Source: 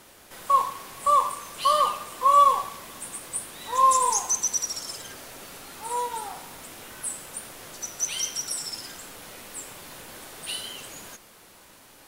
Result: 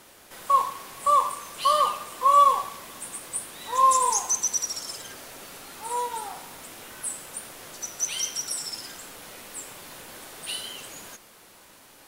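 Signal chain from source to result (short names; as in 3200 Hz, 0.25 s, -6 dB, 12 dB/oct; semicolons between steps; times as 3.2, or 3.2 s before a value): low shelf 150 Hz -4 dB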